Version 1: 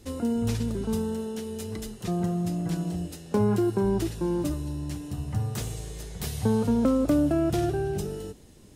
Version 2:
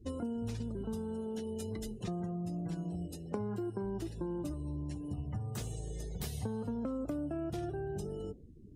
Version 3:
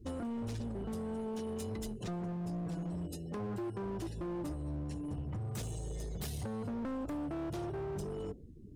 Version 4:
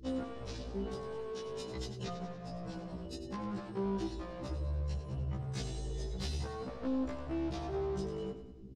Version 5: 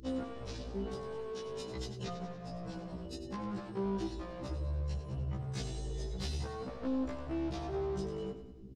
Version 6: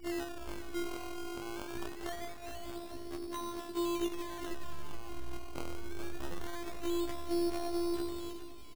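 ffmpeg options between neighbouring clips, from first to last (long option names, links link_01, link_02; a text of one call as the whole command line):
ffmpeg -i in.wav -af "afftdn=noise_reduction=30:noise_floor=-46,acompressor=threshold=-36dB:ratio=5" out.wav
ffmpeg -i in.wav -af "asoftclip=type=hard:threshold=-37.5dB,volume=2dB" out.wav
ffmpeg -i in.wav -af "lowpass=frequency=5000:width_type=q:width=1.7,aecho=1:1:96|192|288|384|480|576:0.299|0.152|0.0776|0.0396|0.0202|0.0103,afftfilt=real='re*1.73*eq(mod(b,3),0)':imag='im*1.73*eq(mod(b,3),0)':win_size=2048:overlap=0.75,volume=3dB" out.wav
ffmpeg -i in.wav -af "acompressor=mode=upward:threshold=-59dB:ratio=2.5" out.wav
ffmpeg -i in.wav -filter_complex "[0:a]afftfilt=real='hypot(re,im)*cos(PI*b)':imag='0':win_size=512:overlap=0.75,acrusher=samples=17:mix=1:aa=0.000001:lfo=1:lforange=17:lforate=0.23,asplit=2[link_01][link_02];[link_02]aecho=0:1:420|840|1260|1680:0.282|0.121|0.0521|0.0224[link_03];[link_01][link_03]amix=inputs=2:normalize=0,volume=5dB" out.wav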